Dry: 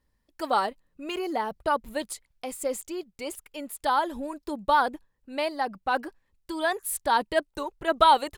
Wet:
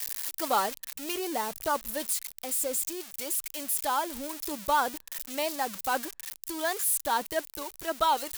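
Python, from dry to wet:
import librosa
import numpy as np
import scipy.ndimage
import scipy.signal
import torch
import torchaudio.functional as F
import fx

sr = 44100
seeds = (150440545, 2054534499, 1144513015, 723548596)

y = x + 0.5 * 10.0 ** (-20.5 / 20.0) * np.diff(np.sign(x), prepend=np.sign(x[:1]))
y = fx.rider(y, sr, range_db=4, speed_s=2.0)
y = F.gain(torch.from_numpy(y), -5.0).numpy()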